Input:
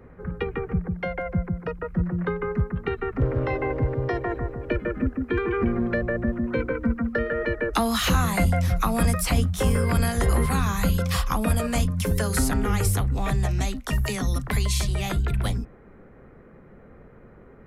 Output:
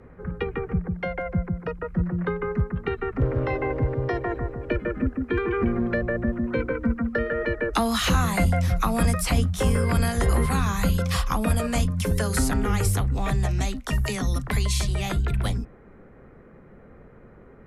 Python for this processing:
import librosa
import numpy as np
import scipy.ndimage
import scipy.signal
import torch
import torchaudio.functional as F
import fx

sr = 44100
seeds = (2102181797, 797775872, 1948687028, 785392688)

y = scipy.signal.sosfilt(scipy.signal.butter(2, 12000.0, 'lowpass', fs=sr, output='sos'), x)